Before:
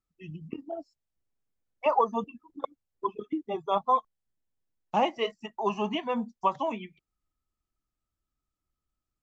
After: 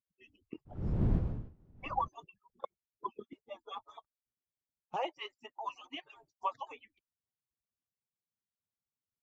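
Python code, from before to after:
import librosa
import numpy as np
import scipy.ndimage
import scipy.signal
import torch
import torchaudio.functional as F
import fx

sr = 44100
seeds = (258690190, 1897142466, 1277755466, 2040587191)

y = fx.hpss_only(x, sr, part='percussive')
y = fx.dmg_wind(y, sr, seeds[0], corner_hz=140.0, level_db=-29.0, at=(0.65, 2.07), fade=0.02)
y = fx.bass_treble(y, sr, bass_db=-7, treble_db=-2, at=(4.96, 6.09))
y = F.gain(torch.from_numpy(y), -8.0).numpy()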